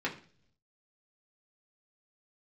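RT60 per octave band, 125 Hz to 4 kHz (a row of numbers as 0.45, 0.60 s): 1.0, 0.75, 0.55, 0.40, 0.45, 0.50 s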